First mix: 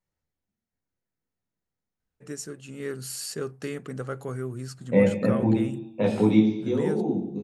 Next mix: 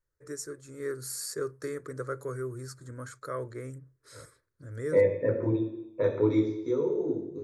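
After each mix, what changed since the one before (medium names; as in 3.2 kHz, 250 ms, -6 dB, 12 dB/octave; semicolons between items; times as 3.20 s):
first voice: entry -2.00 s; master: add static phaser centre 770 Hz, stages 6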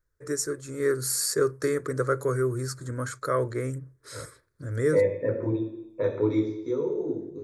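first voice +9.5 dB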